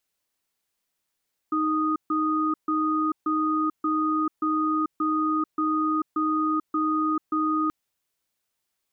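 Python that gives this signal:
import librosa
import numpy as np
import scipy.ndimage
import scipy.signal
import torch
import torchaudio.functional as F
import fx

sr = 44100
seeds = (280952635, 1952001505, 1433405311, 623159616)

y = fx.cadence(sr, length_s=6.18, low_hz=311.0, high_hz=1240.0, on_s=0.44, off_s=0.14, level_db=-24.0)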